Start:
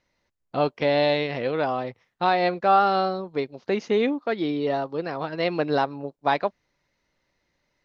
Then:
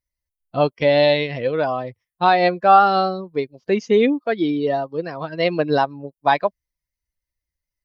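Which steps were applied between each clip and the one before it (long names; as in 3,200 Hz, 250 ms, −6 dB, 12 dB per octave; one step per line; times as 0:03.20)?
spectral dynamics exaggerated over time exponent 1.5
level +7.5 dB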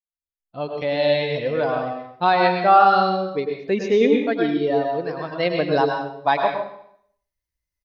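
fade in at the beginning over 1.57 s
repeating echo 85 ms, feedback 57%, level −23.5 dB
dense smooth reverb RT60 0.63 s, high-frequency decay 0.95×, pre-delay 90 ms, DRR 2 dB
level −2.5 dB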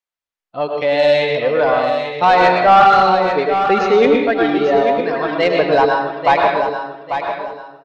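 mid-hump overdrive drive 16 dB, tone 2,100 Hz, clips at −1 dBFS
in parallel at −10 dB: soft clipping −12 dBFS, distortion −12 dB
on the sum: repeating echo 843 ms, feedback 29%, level −8 dB
level −1 dB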